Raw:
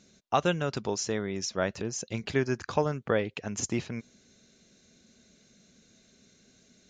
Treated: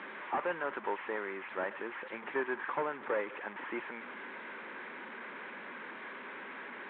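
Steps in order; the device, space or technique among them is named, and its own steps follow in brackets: digital answering machine (band-pass 330–3300 Hz; one-bit delta coder 16 kbps, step -37.5 dBFS; cabinet simulation 370–3300 Hz, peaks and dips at 440 Hz -4 dB, 670 Hz -9 dB, 960 Hz +6 dB, 1.7 kHz +4 dB, 2.8 kHz -8 dB); trim +1 dB

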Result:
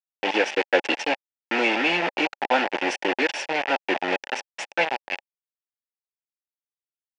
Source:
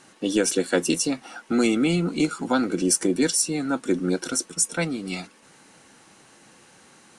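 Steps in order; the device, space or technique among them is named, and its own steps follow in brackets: hand-held game console (bit crusher 4-bit; cabinet simulation 440–4300 Hz, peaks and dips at 570 Hz +6 dB, 830 Hz +10 dB, 1.2 kHz -8 dB, 1.8 kHz +7 dB, 2.6 kHz +9 dB, 4 kHz -7 dB)

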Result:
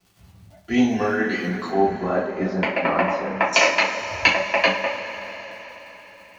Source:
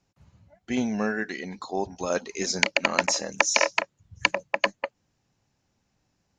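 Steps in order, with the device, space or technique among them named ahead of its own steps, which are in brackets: lo-fi chain (low-pass 4.8 kHz 12 dB/octave; wow and flutter; crackle 49 per s -46 dBFS); 1.69–3.53 s: Chebyshev low-pass 1.3 kHz, order 2; two-slope reverb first 0.34 s, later 4.5 s, from -18 dB, DRR -7 dB

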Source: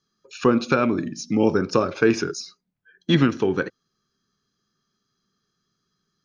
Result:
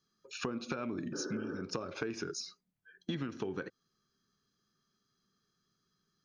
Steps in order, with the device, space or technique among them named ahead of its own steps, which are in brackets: serial compression, peaks first (compression, threshold -24 dBFS, peak gain reduction 11 dB; compression 2:1, threshold -33 dBFS, peak gain reduction 7 dB); spectral replace 1.16–1.56 s, 250–1900 Hz after; trim -4.5 dB

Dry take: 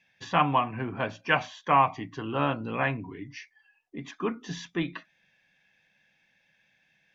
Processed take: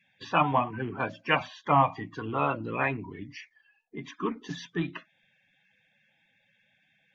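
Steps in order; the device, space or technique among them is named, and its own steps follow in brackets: clip after many re-uploads (low-pass 6.3 kHz; coarse spectral quantiser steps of 30 dB)

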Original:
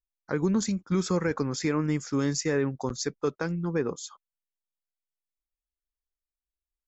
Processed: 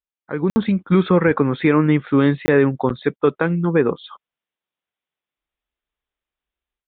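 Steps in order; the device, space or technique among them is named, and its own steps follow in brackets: call with lost packets (high-pass 110 Hz 6 dB/octave; resampled via 8 kHz; level rider gain up to 13 dB; lost packets of 20 ms bursts)

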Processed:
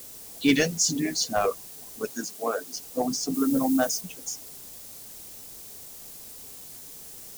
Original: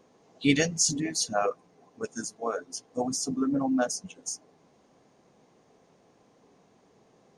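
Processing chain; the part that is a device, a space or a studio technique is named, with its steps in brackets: tape answering machine (band-pass 350–3300 Hz; saturation -16 dBFS, distortion -21 dB; wow and flutter; white noise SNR 21 dB); 2.11–2.76 s: high-pass 150 Hz 24 dB/octave; 3.34–4.01 s: treble shelf 7.7 kHz +9 dB; tone controls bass +14 dB, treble +12 dB; trim +3 dB

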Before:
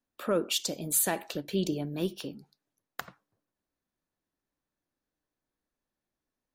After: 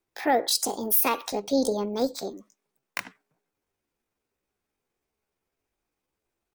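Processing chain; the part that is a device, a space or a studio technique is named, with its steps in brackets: chipmunk voice (pitch shift +6 st); trim +5.5 dB

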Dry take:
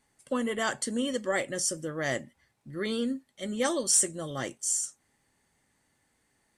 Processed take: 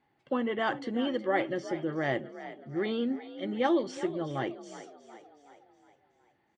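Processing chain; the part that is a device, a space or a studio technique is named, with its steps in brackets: frequency-shifting delay pedal into a guitar cabinet (frequency-shifting echo 368 ms, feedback 52%, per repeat +47 Hz, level -14 dB; cabinet simulation 76–3500 Hz, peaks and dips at 140 Hz +4 dB, 340 Hz +9 dB, 800 Hz +8 dB); trim -2 dB

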